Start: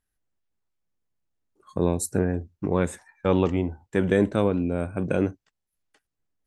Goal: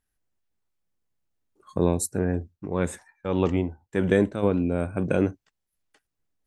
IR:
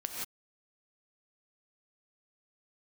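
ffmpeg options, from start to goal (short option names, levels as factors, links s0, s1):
-filter_complex "[0:a]asplit=3[s0][s1][s2];[s0]afade=t=out:st=2.06:d=0.02[s3];[s1]tremolo=f=1.7:d=0.63,afade=t=in:st=2.06:d=0.02,afade=t=out:st=4.42:d=0.02[s4];[s2]afade=t=in:st=4.42:d=0.02[s5];[s3][s4][s5]amix=inputs=3:normalize=0,volume=1.12"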